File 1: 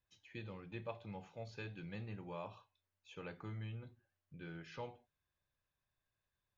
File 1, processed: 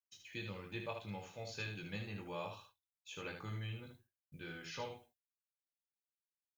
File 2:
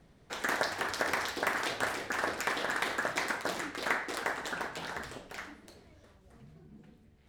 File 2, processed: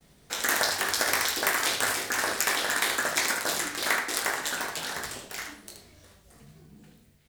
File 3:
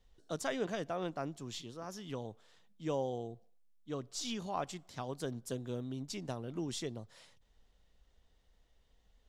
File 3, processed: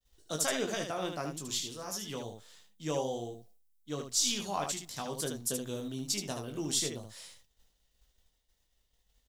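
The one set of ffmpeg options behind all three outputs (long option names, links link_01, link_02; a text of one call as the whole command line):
ffmpeg -i in.wav -af "crystalizer=i=4:c=0,agate=range=-33dB:threshold=-58dB:ratio=3:detection=peak,aecho=1:1:20|76:0.501|0.501" out.wav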